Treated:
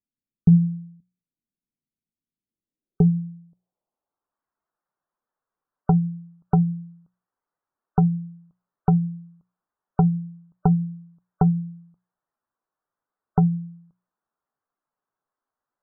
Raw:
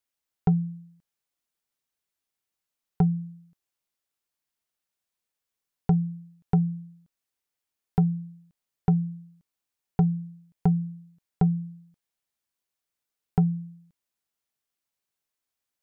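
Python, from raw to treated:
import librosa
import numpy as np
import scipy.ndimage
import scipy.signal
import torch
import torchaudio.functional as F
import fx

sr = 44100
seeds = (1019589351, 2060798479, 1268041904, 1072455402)

y = fx.peak_eq(x, sr, hz=62.0, db=-7.5, octaves=0.77)
y = fx.hum_notches(y, sr, base_hz=60, count=3)
y = fx.filter_sweep_lowpass(y, sr, from_hz=220.0, to_hz=1200.0, start_s=2.35, end_s=4.4, q=1.8)
y = fx.spec_topn(y, sr, count=64)
y = y * 10.0 ** (4.5 / 20.0)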